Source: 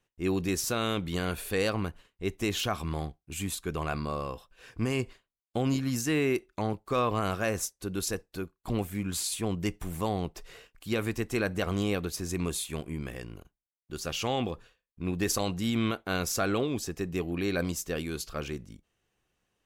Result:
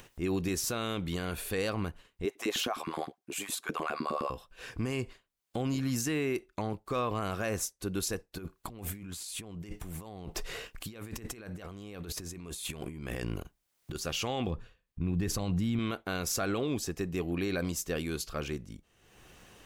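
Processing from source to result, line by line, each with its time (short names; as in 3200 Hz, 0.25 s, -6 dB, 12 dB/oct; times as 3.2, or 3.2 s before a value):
2.25–4.3 LFO high-pass saw up 9.7 Hz 210–1700 Hz
8.38–13.95 negative-ratio compressor -43 dBFS
14.47–15.79 tone controls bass +10 dB, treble -5 dB
whole clip: upward compressor, threshold -36 dBFS; limiter -22 dBFS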